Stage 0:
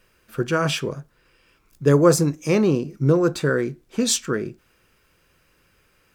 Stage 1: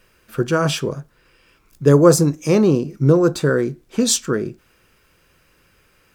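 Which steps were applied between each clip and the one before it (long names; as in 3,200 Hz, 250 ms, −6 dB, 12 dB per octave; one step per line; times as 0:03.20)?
dynamic equaliser 2,200 Hz, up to −6 dB, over −41 dBFS, Q 1.3
level +4 dB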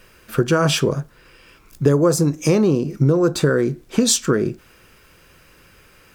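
downward compressor 6 to 1, threshold −20 dBFS, peak gain reduction 13.5 dB
level +7 dB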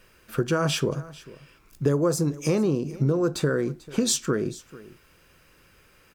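single-tap delay 442 ms −19.5 dB
level −7 dB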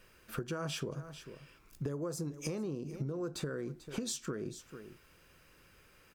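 downward compressor 6 to 1, threshold −30 dBFS, peak gain reduction 12.5 dB
level −5 dB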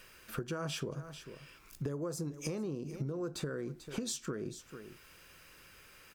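one half of a high-frequency compander encoder only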